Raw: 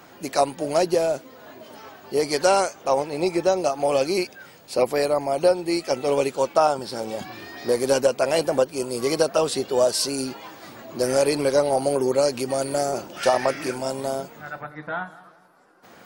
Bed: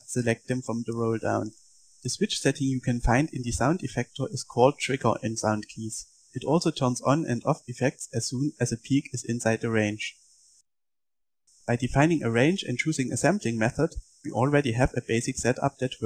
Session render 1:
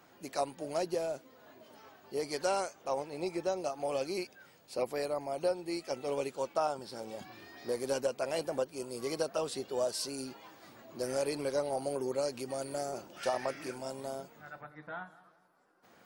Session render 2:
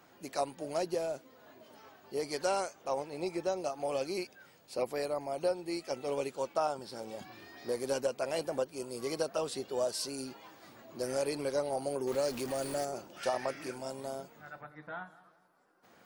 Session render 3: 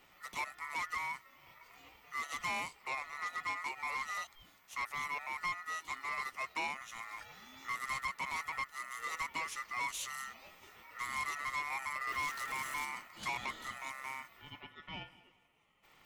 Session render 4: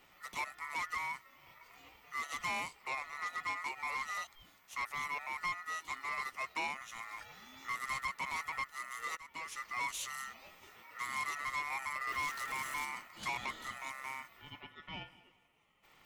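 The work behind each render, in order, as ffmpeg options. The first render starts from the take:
-af "volume=0.224"
-filter_complex "[0:a]asettb=1/sr,asplit=3[s0][s1][s2];[s0]atrim=end=12.074[s3];[s1]atrim=start=12.07:end=12.85,asetpts=PTS-STARTPTS,afade=t=in:d=0.004:c=qsin,afade=t=out:st=0.776:d=0.004:c=qsin,aeval=exprs='val(0)+0.5*0.0112*sgn(val(0))':c=same[s4];[s2]atrim=start=12.846[s5];[s3][s4]acrossfade=d=0.004:c1=hsin:c2=qsin[s6];[s6][s5]acrossfade=d=0.004:c1=qsin:c2=hsin"
-af "aeval=exprs='val(0)*sin(2*PI*1600*n/s)':c=same,asoftclip=type=tanh:threshold=0.0316"
-filter_complex "[0:a]asettb=1/sr,asplit=3[s0][s1][s2];[s0]atrim=end=10.744[s3];[s1]atrim=start=10.74:end=11.36,asetpts=PTS-STARTPTS,afade=t=in:d=0.004:c=qsin,afade=t=out:st=0.616:d=0.004:c=qsin,highpass=96[s4];[s2]atrim=start=11.356[s5];[s3][s4]acrossfade=d=0.004:c1=hsin:c2=qsin[s6];[s6][s5]acrossfade=d=0.004:c1=qsin:c2=hsin,asplit=2[s7][s8];[s7]atrim=end=9.17,asetpts=PTS-STARTPTS,afade=t=out:st=9.166:d=0.004:c=hsin:silence=0.1[s9];[s8]atrim=start=9.17,asetpts=PTS-STARTPTS,afade=t=in:d=0.49:silence=0.1[s10];[s9][s10]concat=n=2:v=0:a=1"

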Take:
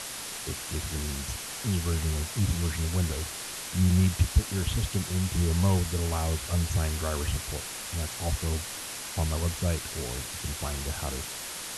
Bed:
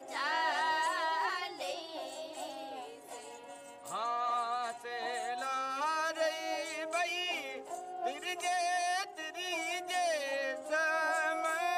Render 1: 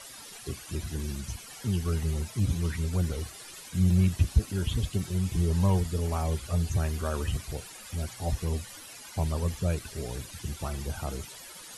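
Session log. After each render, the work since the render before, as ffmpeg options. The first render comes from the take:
-af "afftdn=nr=14:nf=-38"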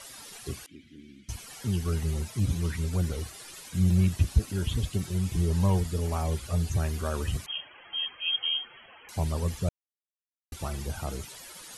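-filter_complex "[0:a]asettb=1/sr,asplit=3[s0][s1][s2];[s0]atrim=end=0.664[s3];[s1]atrim=start=0.66:end=1.29,asetpts=PTS-STARTPTS,afade=t=in:d=0.004:c=qsin,afade=t=out:st=0.626:d=0.004:c=qsin,asplit=3[s4][s5][s6];[s4]bandpass=f=270:t=q:w=8,volume=1[s7];[s5]bandpass=f=2290:t=q:w=8,volume=0.501[s8];[s6]bandpass=f=3010:t=q:w=8,volume=0.355[s9];[s7][s8][s9]amix=inputs=3:normalize=0[s10];[s2]atrim=start=1.286[s11];[s3][s10]acrossfade=d=0.004:c1=hsin:c2=qsin[s12];[s12][s11]acrossfade=d=0.004:c1=qsin:c2=hsin,asettb=1/sr,asplit=3[s13][s14][s15];[s13]atrim=end=7.464[s16];[s14]atrim=start=7.46:end=9.09,asetpts=PTS-STARTPTS,afade=t=in:d=0.004:c=qsin,afade=t=out:st=1.626:d=0.004:c=qsin,lowpass=f=2800:t=q:w=0.5098,lowpass=f=2800:t=q:w=0.6013,lowpass=f=2800:t=q:w=0.9,lowpass=f=2800:t=q:w=2.563,afreqshift=-3300[s17];[s15]atrim=start=9.086[s18];[s16][s17]acrossfade=d=0.004:c1=hsin:c2=qsin[s19];[s19][s18]acrossfade=d=0.004:c1=qsin:c2=hsin,asplit=3[s20][s21][s22];[s20]atrim=end=9.69,asetpts=PTS-STARTPTS,afade=t=out:st=9.686:d=0.004:c=hsin[s23];[s21]atrim=start=9.69:end=10.52,asetpts=PTS-STARTPTS,volume=0[s24];[s22]atrim=start=10.52,asetpts=PTS-STARTPTS,afade=t=in:d=0.004:c=hsin[s25];[s23][s24][s25]concat=n=3:v=0:a=1"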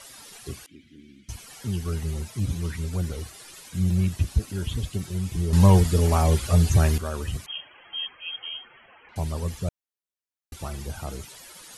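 -filter_complex "[0:a]asettb=1/sr,asplit=3[s0][s1][s2];[s0]atrim=end=8.074[s3];[s1]atrim=start=8.07:end=9.16,asetpts=PTS-STARTPTS,afade=t=in:d=0.004:c=qsin,afade=t=out:st=1.086:d=0.004:c=qsin,lowpass=f=2700:w=0.5412,lowpass=f=2700:w=1.3066[s4];[s2]atrim=start=9.156[s5];[s3][s4]acrossfade=d=0.004:c1=hsin:c2=qsin[s6];[s6][s5]acrossfade=d=0.004:c1=qsin:c2=hsin,asplit=3[s7][s8][s9];[s7]atrim=end=5.532[s10];[s8]atrim=start=5.528:end=6.982,asetpts=PTS-STARTPTS,volume=2.82[s11];[s9]atrim=start=6.978[s12];[s10][s11]acrossfade=d=0.004:c1=hsin:c2=hsin[s13];[s13][s12]acrossfade=d=0.004:c1=hsin:c2=hsin"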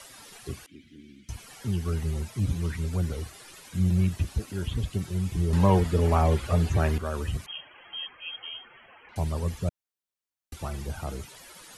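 -filter_complex "[0:a]acrossover=split=220|1100|3000[s0][s1][s2][s3];[s0]alimiter=limit=0.126:level=0:latency=1:release=436[s4];[s3]acompressor=threshold=0.00398:ratio=6[s5];[s4][s1][s2][s5]amix=inputs=4:normalize=0"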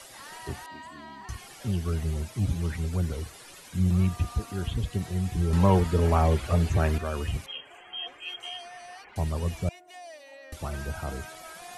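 -filter_complex "[1:a]volume=0.237[s0];[0:a][s0]amix=inputs=2:normalize=0"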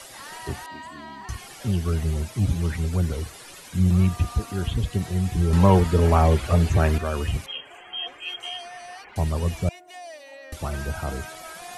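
-af "volume=1.68"

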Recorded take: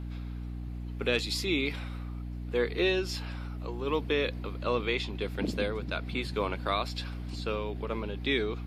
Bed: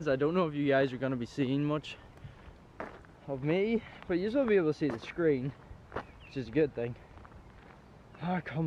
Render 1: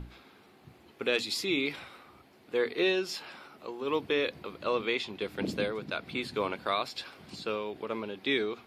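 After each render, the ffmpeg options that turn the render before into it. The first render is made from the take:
-af "bandreject=f=60:t=h:w=6,bandreject=f=120:t=h:w=6,bandreject=f=180:t=h:w=6,bandreject=f=240:t=h:w=6,bandreject=f=300:t=h:w=6"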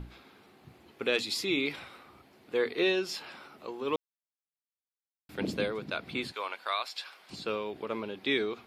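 -filter_complex "[0:a]asettb=1/sr,asplit=3[s0][s1][s2];[s0]atrim=end=6.324[s3];[s1]atrim=start=6.32:end=7.3,asetpts=PTS-STARTPTS,afade=t=in:d=0.004:c=qsin,afade=t=out:st=0.976:d=0.004:c=qsin,highpass=830[s4];[s2]atrim=start=7.296[s5];[s3][s4]acrossfade=d=0.004:c1=hsin:c2=qsin[s6];[s6][s5]acrossfade=d=0.004:c1=qsin:c2=hsin,asplit=3[s7][s8][s9];[s7]atrim=end=3.96,asetpts=PTS-STARTPTS,afade=t=out:st=3.956:d=0.004:c=hsin[s10];[s8]atrim=start=3.96:end=5.29,asetpts=PTS-STARTPTS,volume=0[s11];[s9]atrim=start=5.29,asetpts=PTS-STARTPTS,afade=t=in:d=0.004:c=hsin[s12];[s10][s11][s12]concat=n=3:v=0:a=1"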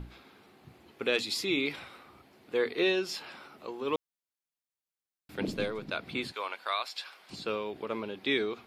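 -filter_complex "[0:a]asettb=1/sr,asplit=3[s0][s1][s2];[s0]atrim=end=5.484[s3];[s1]atrim=start=5.48:end=5.89,asetpts=PTS-STARTPTS,afade=t=in:d=0.004:c=qsin,afade=t=out:st=0.406:d=0.004:c=qsin,aeval=exprs='if(lt(val(0),0),0.708*val(0),val(0))':c=same[s4];[s2]atrim=start=5.886[s5];[s3][s4]acrossfade=d=0.004:c1=hsin:c2=qsin[s6];[s6][s5]acrossfade=d=0.004:c1=qsin:c2=hsin"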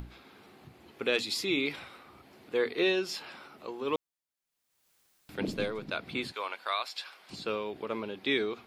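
-af "acompressor=mode=upward:threshold=0.00355:ratio=2.5"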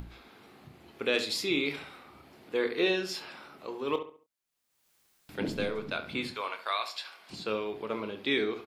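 -filter_complex "[0:a]asplit=2[s0][s1];[s1]adelay=28,volume=0.299[s2];[s0][s2]amix=inputs=2:normalize=0,asplit=2[s3][s4];[s4]adelay=69,lowpass=f=2700:p=1,volume=0.316,asplit=2[s5][s6];[s6]adelay=69,lowpass=f=2700:p=1,volume=0.35,asplit=2[s7][s8];[s8]adelay=69,lowpass=f=2700:p=1,volume=0.35,asplit=2[s9][s10];[s10]adelay=69,lowpass=f=2700:p=1,volume=0.35[s11];[s3][s5][s7][s9][s11]amix=inputs=5:normalize=0"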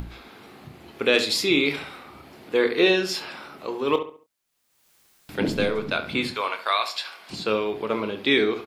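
-af "volume=2.66"

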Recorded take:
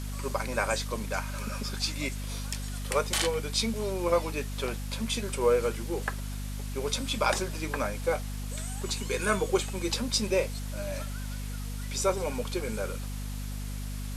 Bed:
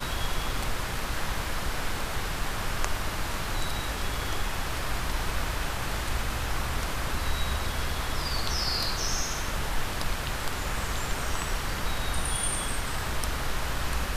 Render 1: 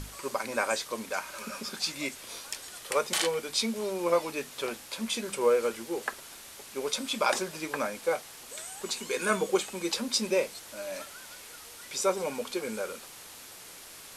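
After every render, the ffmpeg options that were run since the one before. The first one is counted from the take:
-af "bandreject=f=50:t=h:w=6,bandreject=f=100:t=h:w=6,bandreject=f=150:t=h:w=6,bandreject=f=200:t=h:w=6,bandreject=f=250:t=h:w=6"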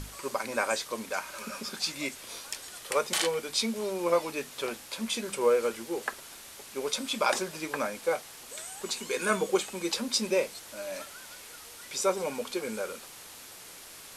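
-af anull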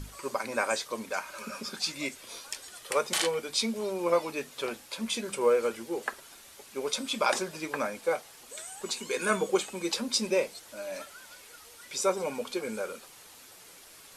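-af "afftdn=nr=6:nf=-48"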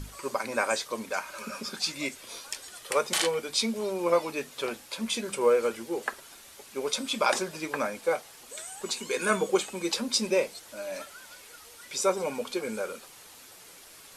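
-af "volume=1.19"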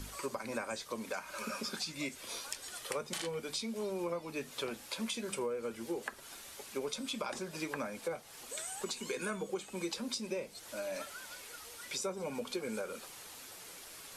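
-filter_complex "[0:a]acrossover=split=240[s0][s1];[s0]alimiter=level_in=5.96:limit=0.0631:level=0:latency=1:release=244,volume=0.168[s2];[s1]acompressor=threshold=0.0158:ratio=12[s3];[s2][s3]amix=inputs=2:normalize=0"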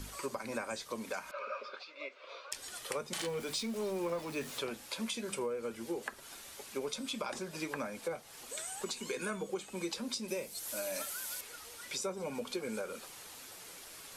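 -filter_complex "[0:a]asettb=1/sr,asplit=3[s0][s1][s2];[s0]atrim=end=1.314[s3];[s1]atrim=start=1.31:end=2.52,asetpts=PTS-STARTPTS,afade=t=in:d=0.004:c=qsin,afade=t=out:st=1.206:d=0.004:c=qsin,highpass=f=480:w=0.5412,highpass=f=480:w=1.3066,equalizer=f=570:t=q:w=4:g=8,equalizer=f=810:t=q:w=4:g=-10,equalizer=f=1200:t=q:w=4:g=5,equalizer=f=1800:t=q:w=4:g=-8,equalizer=f=3200:t=q:w=4:g=-6,lowpass=f=3300:w=0.5412,lowpass=f=3300:w=1.3066[s4];[s2]atrim=start=2.516[s5];[s3][s4]acrossfade=d=0.004:c1=hsin:c2=qsin[s6];[s6][s5]acrossfade=d=0.004:c1=qsin:c2=hsin,asettb=1/sr,asplit=3[s7][s8][s9];[s7]atrim=end=3.184[s10];[s8]atrim=start=3.18:end=4.59,asetpts=PTS-STARTPTS,afade=t=in:d=0.004:c=qsin,afade=t=out:st=1.406:d=0.004:c=qsin,aeval=exprs='val(0)+0.5*0.00596*sgn(val(0))':c=same[s11];[s9]atrim=start=4.586[s12];[s10][s11]acrossfade=d=0.004:c1=hsin:c2=qsin[s13];[s13][s12]acrossfade=d=0.004:c1=qsin:c2=hsin,asettb=1/sr,asplit=3[s14][s15][s16];[s14]atrim=end=10.284[s17];[s15]atrim=start=10.28:end=11.41,asetpts=PTS-STARTPTS,afade=t=in:d=0.004:c=qsin,afade=t=out:st=1.126:d=0.004:c=qsin,aemphasis=mode=production:type=50fm[s18];[s16]atrim=start=11.406[s19];[s17][s18]acrossfade=d=0.004:c1=hsin:c2=qsin[s20];[s20][s19]acrossfade=d=0.004:c1=qsin:c2=hsin"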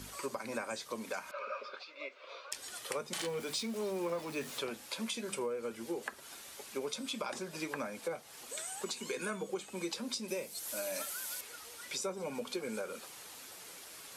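-af "highpass=f=110:p=1"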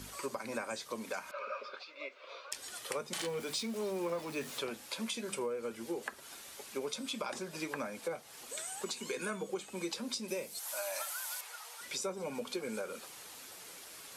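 -filter_complex "[0:a]asettb=1/sr,asplit=3[s0][s1][s2];[s0]atrim=end=10.594[s3];[s1]atrim=start=10.59:end=11.8,asetpts=PTS-STARTPTS,afade=t=in:d=0.004:c=qsin,afade=t=out:st=1.206:d=0.004:c=qsin,highpass=f=820:t=q:w=2[s4];[s2]atrim=start=11.796[s5];[s3][s4]acrossfade=d=0.004:c1=hsin:c2=qsin[s6];[s6][s5]acrossfade=d=0.004:c1=qsin:c2=hsin"

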